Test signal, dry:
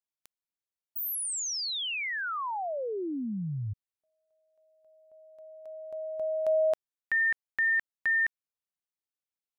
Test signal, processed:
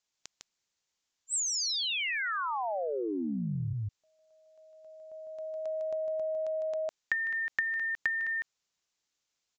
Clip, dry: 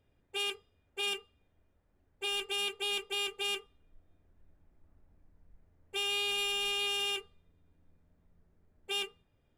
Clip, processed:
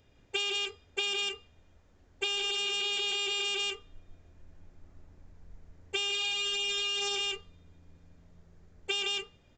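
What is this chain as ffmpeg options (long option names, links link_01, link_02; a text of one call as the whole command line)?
ffmpeg -i in.wav -filter_complex "[0:a]asplit=2[link_01][link_02];[link_02]aecho=0:1:154:0.668[link_03];[link_01][link_03]amix=inputs=2:normalize=0,aresample=16000,aresample=44100,alimiter=level_in=4.5dB:limit=-24dB:level=0:latency=1:release=30,volume=-4.5dB,highshelf=frequency=3800:gain=10.5,acompressor=threshold=-43dB:ratio=6:attack=56:release=66:knee=1:detection=peak,volume=8dB" out.wav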